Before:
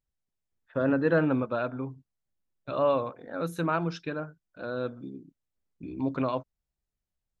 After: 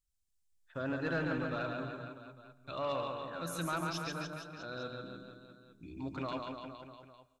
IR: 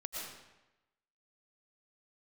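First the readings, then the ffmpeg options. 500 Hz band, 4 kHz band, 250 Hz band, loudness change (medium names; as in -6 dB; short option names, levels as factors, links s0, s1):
-10.5 dB, +2.0 dB, -10.0 dB, -9.0 dB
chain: -filter_complex "[0:a]equalizer=f=125:t=o:w=1:g=-7,equalizer=f=250:t=o:w=1:g=-9,equalizer=f=500:t=o:w=1:g=-11,equalizer=f=1000:t=o:w=1:g=-6,equalizer=f=2000:t=o:w=1:g=-5,equalizer=f=8000:t=o:w=1:g=6,aecho=1:1:140|294|463.4|649.7|854.7:0.631|0.398|0.251|0.158|0.1,asoftclip=type=tanh:threshold=0.0447,asplit=2[s0][s1];[1:a]atrim=start_sample=2205[s2];[s1][s2]afir=irnorm=-1:irlink=0,volume=0.2[s3];[s0][s3]amix=inputs=2:normalize=0"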